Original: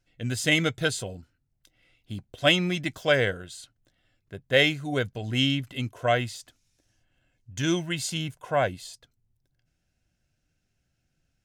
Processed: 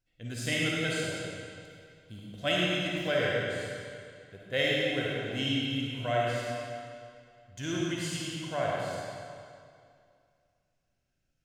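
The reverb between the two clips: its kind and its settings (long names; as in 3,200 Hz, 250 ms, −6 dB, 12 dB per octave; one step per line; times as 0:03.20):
comb and all-pass reverb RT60 2.3 s, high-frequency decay 0.9×, pre-delay 15 ms, DRR −5 dB
level −10.5 dB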